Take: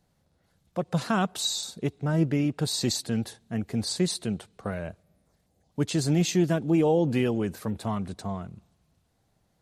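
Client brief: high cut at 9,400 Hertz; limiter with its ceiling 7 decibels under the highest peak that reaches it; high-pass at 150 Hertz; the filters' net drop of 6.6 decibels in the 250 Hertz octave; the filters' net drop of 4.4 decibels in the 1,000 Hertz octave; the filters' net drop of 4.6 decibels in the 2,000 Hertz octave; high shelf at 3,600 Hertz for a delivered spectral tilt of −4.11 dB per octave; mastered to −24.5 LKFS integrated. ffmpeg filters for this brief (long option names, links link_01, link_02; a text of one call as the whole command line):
ffmpeg -i in.wav -af "highpass=150,lowpass=9400,equalizer=frequency=250:width_type=o:gain=-8.5,equalizer=frequency=1000:width_type=o:gain=-4.5,equalizer=frequency=2000:width_type=o:gain=-5.5,highshelf=frequency=3600:gain=3,volume=9dB,alimiter=limit=-13dB:level=0:latency=1" out.wav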